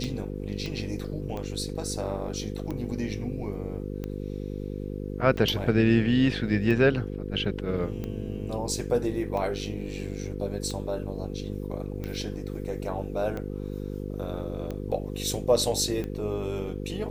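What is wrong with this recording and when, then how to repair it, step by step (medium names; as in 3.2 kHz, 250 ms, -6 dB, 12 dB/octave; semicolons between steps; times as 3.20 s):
buzz 50 Hz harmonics 10 -34 dBFS
tick 45 rpm -21 dBFS
0.66 s: pop -22 dBFS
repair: de-click; de-hum 50 Hz, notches 10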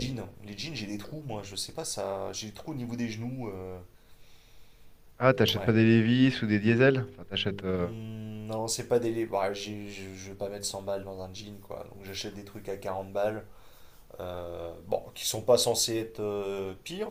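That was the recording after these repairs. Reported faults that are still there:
nothing left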